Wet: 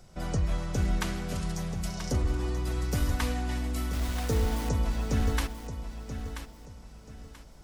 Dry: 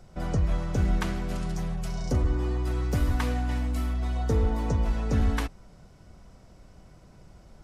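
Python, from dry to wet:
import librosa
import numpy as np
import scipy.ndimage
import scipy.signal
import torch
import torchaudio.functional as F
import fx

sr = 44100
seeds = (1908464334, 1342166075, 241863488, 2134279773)

p1 = fx.high_shelf(x, sr, hz=2800.0, db=8.5)
p2 = fx.quant_dither(p1, sr, seeds[0], bits=6, dither='none', at=(3.93, 4.69))
p3 = p2 + fx.echo_feedback(p2, sr, ms=983, feedback_pct=31, wet_db=-10, dry=0)
y = p3 * librosa.db_to_amplitude(-3.0)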